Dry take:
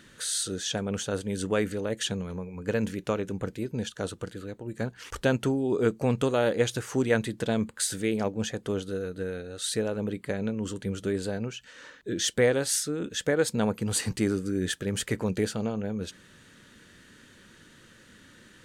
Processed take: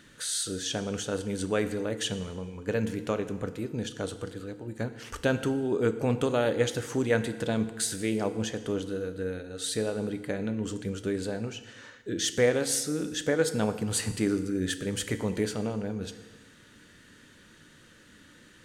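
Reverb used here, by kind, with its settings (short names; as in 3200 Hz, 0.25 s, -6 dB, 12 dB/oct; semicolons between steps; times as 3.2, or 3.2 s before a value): FDN reverb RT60 1.3 s, low-frequency decay 1×, high-frequency decay 0.9×, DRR 9.5 dB; gain -1.5 dB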